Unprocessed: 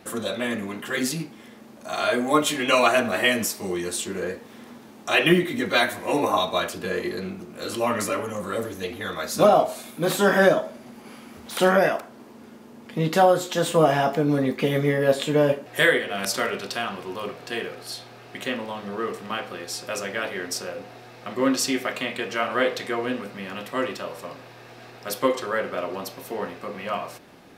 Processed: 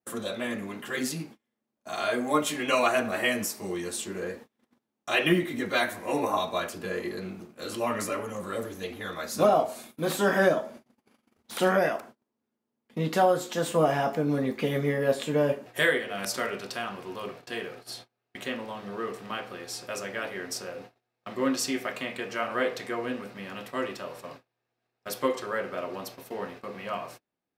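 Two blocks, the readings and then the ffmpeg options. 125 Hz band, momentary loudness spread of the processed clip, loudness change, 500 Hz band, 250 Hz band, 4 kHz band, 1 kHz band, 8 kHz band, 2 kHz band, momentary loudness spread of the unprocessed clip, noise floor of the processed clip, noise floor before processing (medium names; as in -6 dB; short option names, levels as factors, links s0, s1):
-5.0 dB, 15 LU, -5.0 dB, -5.0 dB, -5.0 dB, -6.5 dB, -5.0 dB, -5.0 dB, -5.5 dB, 16 LU, -84 dBFS, -46 dBFS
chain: -af "adynamicequalizer=threshold=0.00631:dfrequency=3500:dqfactor=2.2:tfrequency=3500:tqfactor=2.2:attack=5:release=100:ratio=0.375:range=2:mode=cutabove:tftype=bell,agate=range=0.0224:threshold=0.0112:ratio=16:detection=peak,volume=0.562"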